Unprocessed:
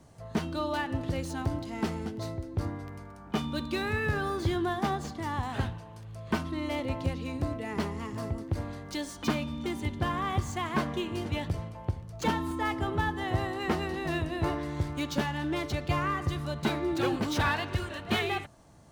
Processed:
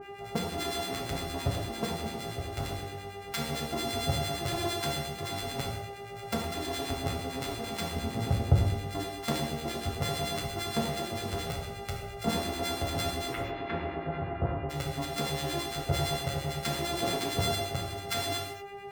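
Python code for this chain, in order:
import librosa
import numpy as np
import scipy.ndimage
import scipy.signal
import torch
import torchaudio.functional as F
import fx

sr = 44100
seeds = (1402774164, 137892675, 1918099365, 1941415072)

y = np.r_[np.sort(x[:len(x) // 64 * 64].reshape(-1, 64), axis=1).ravel(), x[len(x) // 64 * 64:]]
y = fx.low_shelf(y, sr, hz=270.0, db=10.0, at=(7.96, 9.04))
y = fx.lowpass(y, sr, hz=fx.line((13.27, 3200.0), (14.69, 1300.0)), slope=24, at=(13.27, 14.69), fade=0.02)
y = fx.dmg_buzz(y, sr, base_hz=400.0, harmonics=7, level_db=-43.0, tilt_db=-6, odd_only=False)
y = fx.harmonic_tremolo(y, sr, hz=8.8, depth_pct=100, crossover_hz=1200.0)
y = fx.rev_gated(y, sr, seeds[0], gate_ms=260, shape='falling', drr_db=-1.0)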